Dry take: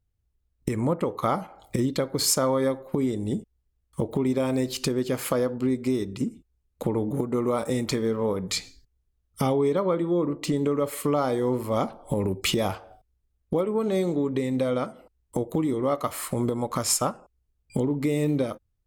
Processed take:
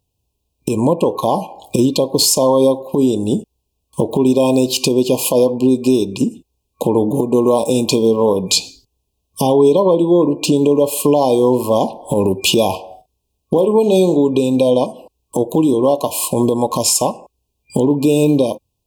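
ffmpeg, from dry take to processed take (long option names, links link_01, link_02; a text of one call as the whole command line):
ffmpeg -i in.wav -filter_complex "[0:a]asettb=1/sr,asplit=3[link_01][link_02][link_03];[link_01]atrim=end=12.694[link_04];[link_02]atrim=start=12.69:end=14.18,asetpts=PTS-STARTPTS,afade=type=in:duration=0.004:curve=qsin,afade=type=out:start_time=1.486:duration=0.004:curve=qsin,asplit=2[link_05][link_06];[link_06]adelay=43,volume=-11dB[link_07];[link_05][link_07]amix=inputs=2:normalize=0,atrim=end_sample=65709[link_08];[link_03]atrim=start=14.176[link_09];[link_04][link_08]acrossfade=duration=0.004:curve1=hsin:curve2=qsin[link_10];[link_10][link_09]acrossfade=duration=0.004:curve1=qsin:curve2=hsin,highpass=frequency=260:poles=1,afftfilt=real='re*(1-between(b*sr/4096,1100,2400))':imag='im*(1-between(b*sr/4096,1100,2400))':win_size=4096:overlap=0.75,alimiter=level_in=17dB:limit=-1dB:release=50:level=0:latency=1,volume=-2.5dB" out.wav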